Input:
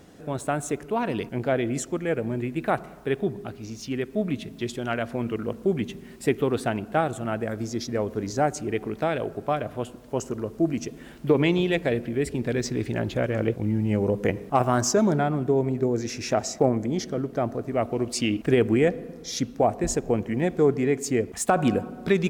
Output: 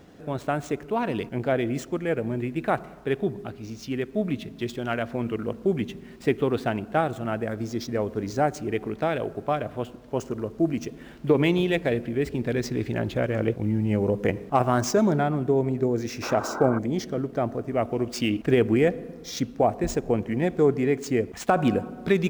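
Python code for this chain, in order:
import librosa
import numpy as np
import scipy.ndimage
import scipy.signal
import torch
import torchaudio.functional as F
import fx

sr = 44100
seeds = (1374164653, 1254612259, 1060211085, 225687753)

y = scipy.ndimage.median_filter(x, 5, mode='constant')
y = fx.spec_paint(y, sr, seeds[0], shape='noise', start_s=16.22, length_s=0.57, low_hz=220.0, high_hz=1600.0, level_db=-33.0)
y = fx.notch(y, sr, hz=4100.0, q=12.0, at=(17.54, 18.18))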